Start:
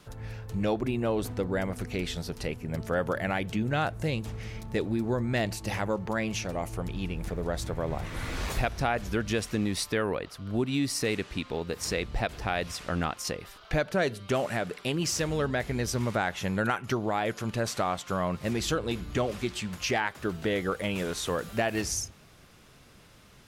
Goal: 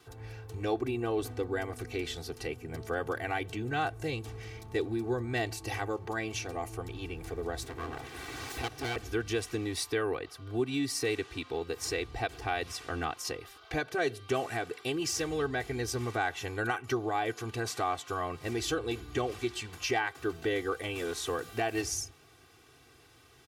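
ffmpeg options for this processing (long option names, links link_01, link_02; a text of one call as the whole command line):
ffmpeg -i in.wav -filter_complex "[0:a]asettb=1/sr,asplit=3[link_01][link_02][link_03];[link_01]atrim=end=7.634[link_04];[link_02]atrim=start=7.63:end=8.96,asetpts=PTS-STARTPTS,afade=type=in:duration=0.004:curve=qsin,afade=type=out:start_time=1.326:duration=0.004:curve=qsin,aeval=exprs='abs(val(0))':channel_layout=same[link_05];[link_03]atrim=start=8.956[link_06];[link_04][link_05]acrossfade=duration=0.004:curve1=hsin:curve2=qsin[link_07];[link_07][link_06]acrossfade=duration=0.004:curve1=qsin:curve2=hsin,highpass=81,aecho=1:1:2.6:0.95,volume=-5.5dB" out.wav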